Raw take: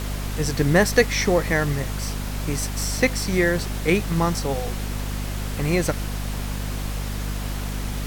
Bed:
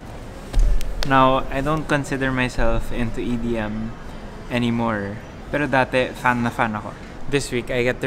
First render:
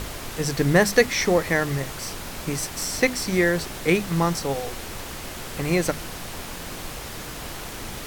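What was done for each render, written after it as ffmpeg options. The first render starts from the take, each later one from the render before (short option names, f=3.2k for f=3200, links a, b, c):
-af "bandreject=f=50:t=h:w=6,bandreject=f=100:t=h:w=6,bandreject=f=150:t=h:w=6,bandreject=f=200:t=h:w=6,bandreject=f=250:t=h:w=6"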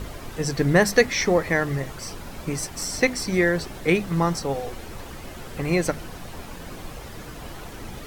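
-af "afftdn=nr=9:nf=-36"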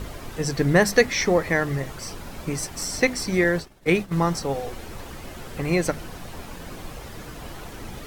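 -filter_complex "[0:a]asettb=1/sr,asplit=3[a][b][c];[a]atrim=end=3.444[d];[b]atrim=start=3.44:end=4.18,asetpts=PTS-STARTPTS,afade=t=in:d=0.004:c=qsin,afade=t=out:st=0.736:d=0.004:c=qsin,agate=range=-33dB:threshold=-26dB:ratio=3:release=100:detection=peak[e];[c]atrim=start=4.176[f];[d][e]acrossfade=d=0.004:c1=hsin:c2=qsin[g];[g][f]acrossfade=d=0.004:c1=qsin:c2=hsin"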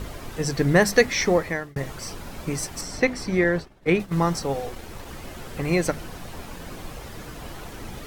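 -filter_complex "[0:a]asettb=1/sr,asplit=3[a][b][c];[a]atrim=end=2.814[d];[b]atrim=start=2.81:end=4,asetpts=PTS-STARTPTS,afade=t=in:d=0.004:c=qsin,afade=t=out:st=1.186:d=0.004:c=qsin,highshelf=f=5.1k:g=-12[e];[c]atrim=start=3.996[f];[d][e]acrossfade=d=0.004:c1=hsin:c2=qsin[g];[g][f]acrossfade=d=0.004:c1=qsin:c2=hsin,asettb=1/sr,asplit=3[h][i][j];[h]atrim=end=4.674[k];[i]atrim=start=4.67:end=5.07,asetpts=PTS-STARTPTS,afade=t=in:d=0.004:c=qsin,afade=t=out:st=0.396:d=0.004:c=qsin,aeval=exprs='sgn(val(0))*max(abs(val(0))-0.00355,0)':c=same[l];[j]atrim=start=5.066[m];[k][l]acrossfade=d=0.004:c1=hsin:c2=qsin[n];[n][m]acrossfade=d=0.004:c1=qsin:c2=hsin,asplit=2[o][p];[o]atrim=end=1.76,asetpts=PTS-STARTPTS,afade=t=out:st=1.35:d=0.41[q];[p]atrim=start=1.76,asetpts=PTS-STARTPTS,afade=t=in:d=0.004:c=hsin[r];[q][r]concat=n=2:v=0:a=1"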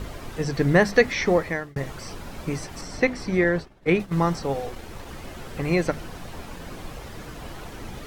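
-filter_complex "[0:a]acrossover=split=4600[a][b];[b]acompressor=threshold=-40dB:ratio=4:attack=1:release=60[c];[a][c]amix=inputs=2:normalize=0,highshelf=f=7.6k:g=-5"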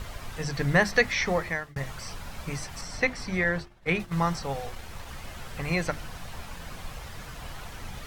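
-af "equalizer=f=340:t=o:w=1.5:g=-11,bandreject=f=50:t=h:w=6,bandreject=f=100:t=h:w=6,bandreject=f=150:t=h:w=6,bandreject=f=200:t=h:w=6,bandreject=f=250:t=h:w=6,bandreject=f=300:t=h:w=6,bandreject=f=350:t=h:w=6"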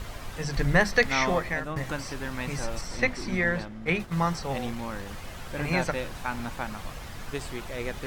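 -filter_complex "[1:a]volume=-14dB[a];[0:a][a]amix=inputs=2:normalize=0"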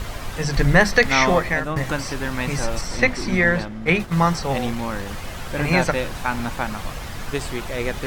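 -af "volume=8dB,alimiter=limit=-3dB:level=0:latency=1"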